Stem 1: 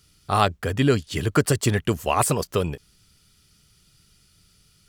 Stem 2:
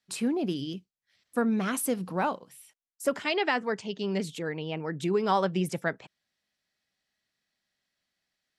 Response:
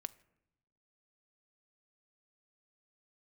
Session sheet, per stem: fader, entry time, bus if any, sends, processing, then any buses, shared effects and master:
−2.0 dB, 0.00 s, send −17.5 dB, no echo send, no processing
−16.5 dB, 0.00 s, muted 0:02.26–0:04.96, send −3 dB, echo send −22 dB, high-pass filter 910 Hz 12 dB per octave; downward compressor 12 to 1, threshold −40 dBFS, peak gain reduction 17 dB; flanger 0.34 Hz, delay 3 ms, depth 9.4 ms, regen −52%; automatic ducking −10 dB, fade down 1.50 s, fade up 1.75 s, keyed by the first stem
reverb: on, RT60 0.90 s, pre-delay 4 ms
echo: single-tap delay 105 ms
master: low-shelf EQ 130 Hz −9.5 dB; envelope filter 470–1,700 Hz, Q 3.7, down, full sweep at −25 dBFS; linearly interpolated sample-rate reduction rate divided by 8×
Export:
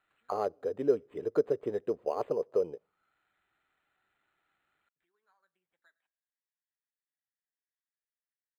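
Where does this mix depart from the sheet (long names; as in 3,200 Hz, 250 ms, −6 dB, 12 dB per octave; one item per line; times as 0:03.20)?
stem 2: missing high-pass filter 910 Hz 12 dB per octave
reverb return +8.0 dB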